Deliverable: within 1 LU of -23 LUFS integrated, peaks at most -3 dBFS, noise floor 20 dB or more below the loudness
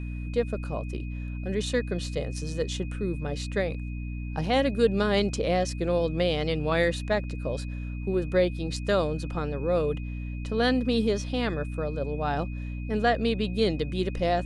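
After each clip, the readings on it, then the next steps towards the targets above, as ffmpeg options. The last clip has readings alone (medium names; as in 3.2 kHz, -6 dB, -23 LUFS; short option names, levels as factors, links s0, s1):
hum 60 Hz; highest harmonic 300 Hz; hum level -31 dBFS; steady tone 2.5 kHz; tone level -48 dBFS; loudness -28.0 LUFS; peak level -10.0 dBFS; loudness target -23.0 LUFS
-> -af "bandreject=f=60:t=h:w=4,bandreject=f=120:t=h:w=4,bandreject=f=180:t=h:w=4,bandreject=f=240:t=h:w=4,bandreject=f=300:t=h:w=4"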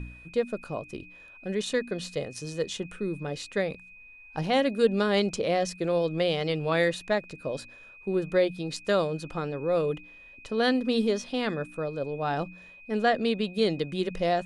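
hum not found; steady tone 2.5 kHz; tone level -48 dBFS
-> -af "bandreject=f=2500:w=30"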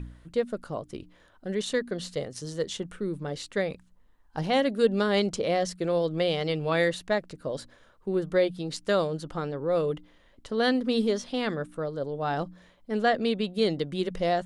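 steady tone not found; loudness -28.5 LUFS; peak level -10.5 dBFS; loudness target -23.0 LUFS
-> -af "volume=1.88"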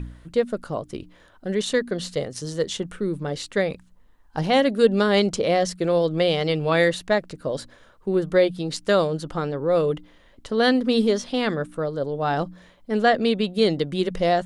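loudness -23.0 LUFS; peak level -5.0 dBFS; noise floor -54 dBFS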